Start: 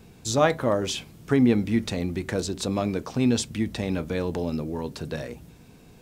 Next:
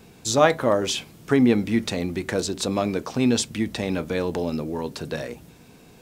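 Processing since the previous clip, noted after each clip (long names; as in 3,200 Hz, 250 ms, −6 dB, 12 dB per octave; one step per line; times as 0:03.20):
low-shelf EQ 150 Hz −9 dB
level +4 dB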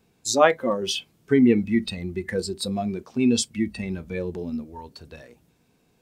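noise reduction from a noise print of the clip's start 16 dB
level +1 dB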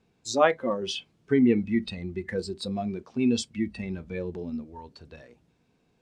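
high-frequency loss of the air 73 metres
level −3.5 dB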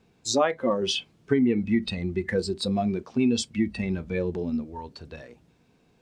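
downward compressor 6 to 1, threshold −24 dBFS, peak gain reduction 10 dB
level +5.5 dB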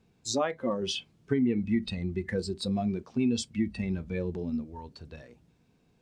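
bass and treble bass +5 dB, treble +2 dB
level −6.5 dB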